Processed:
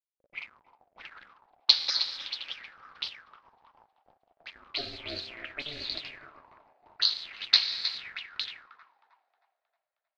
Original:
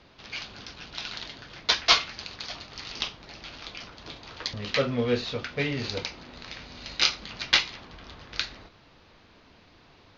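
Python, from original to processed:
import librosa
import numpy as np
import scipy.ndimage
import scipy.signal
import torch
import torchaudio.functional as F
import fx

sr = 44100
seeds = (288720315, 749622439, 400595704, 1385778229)

p1 = fx.spec_dropout(x, sr, seeds[0], share_pct=24)
p2 = fx.tilt_eq(p1, sr, slope=1.5)
p3 = fx.level_steps(p2, sr, step_db=18)
p4 = p2 + F.gain(torch.from_numpy(p3), 2.5).numpy()
p5 = fx.rev_plate(p4, sr, seeds[1], rt60_s=3.7, hf_ratio=0.6, predelay_ms=0, drr_db=5.5)
p6 = np.where(np.abs(p5) >= 10.0 ** (-31.5 / 20.0), p5, 0.0)
p7 = p6 * np.sin(2.0 * np.pi * 150.0 * np.arange(len(p6)) / sr)
p8 = p7 + fx.echo_thinned(p7, sr, ms=314, feedback_pct=69, hz=600.0, wet_db=-11, dry=0)
p9 = fx.envelope_lowpass(p8, sr, base_hz=530.0, top_hz=4300.0, q=6.9, full_db=-25.0, direction='up')
y = F.gain(torch.from_numpy(p9), -15.0).numpy()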